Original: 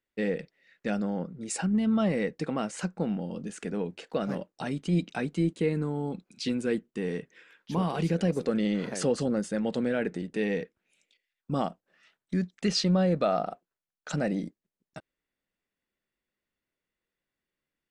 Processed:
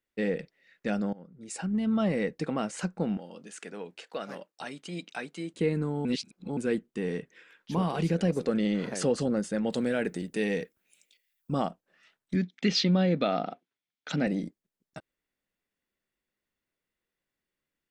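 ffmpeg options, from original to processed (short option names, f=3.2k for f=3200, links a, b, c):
-filter_complex "[0:a]asettb=1/sr,asplit=3[a][b][c];[a]atrim=end=3.174[d];[b]atrim=start=3.17:end=5.54,asetpts=PTS-STARTPTS,afade=t=in:d=0.004:c=qsin,afade=t=out:st=2.366:d=0.004:c=qsin,highpass=f=890:p=1[e];[c]atrim=start=5.536[f];[d][e]acrossfade=d=0.004:c1=hsin:c2=qsin[g];[g][f]acrossfade=d=0.004:c1=qsin:c2=hsin,asettb=1/sr,asplit=3[h][i][j];[h]atrim=end=9.704[k];[i]atrim=start=9.7:end=11.52,asetpts=PTS-STARTPTS,afade=t=in:d=0.004:c=qsin,afade=t=out:st=1.816:d=0.004:c=qsin,aemphasis=mode=production:type=50fm[l];[j]atrim=start=11.516[m];[k][l]acrossfade=d=0.004:c1=hsin:c2=qsin[n];[n][m]acrossfade=d=0.004:c1=qsin:c2=hsin,asettb=1/sr,asplit=3[o][p][q];[o]atrim=end=12.354[r];[p]atrim=start=12.35:end=14.27,asetpts=PTS-STARTPTS,afade=t=in:d=0.004:c=qsin,afade=t=out:st=1.916:d=0.004:c=qsin,highpass=110,equalizer=f=260:t=q:w=4:g=7,equalizer=f=610:t=q:w=4:g=-4,equalizer=f=1.1k:t=q:w=4:g=-4,equalizer=f=2.2k:t=q:w=4:g=7,equalizer=f=3.4k:t=q:w=4:g=8,lowpass=f=6.1k:w=0.5412,lowpass=f=6.1k:w=1.3066[s];[q]atrim=start=14.266[t];[r][s]acrossfade=d=0.004:c1=hsin:c2=qsin[u];[u][t]acrossfade=d=0.004:c1=qsin:c2=hsin,asplit=4[v][w][x][y];[v]atrim=end=1.13,asetpts=PTS-STARTPTS,afade=t=out:st=1.126:d=0.004:c=hsin:silence=0.0841395[z];[w]atrim=start=1.13:end=6.052,asetpts=PTS-STARTPTS,afade=t=in:d=1.3:c=qsin:silence=0.0841395[aa];[x]atrim=start=6.048:end=6.572,asetpts=PTS-STARTPTS,areverse[ab];[y]atrim=start=6.568[ac];[z][aa]concat=n=2:v=0:a=1[ad];[ad][ab]acrossfade=d=0.004:c1=hsin:c2=hsin[ae];[ae][ac]acrossfade=d=0.004:c1=hsin:c2=hsin"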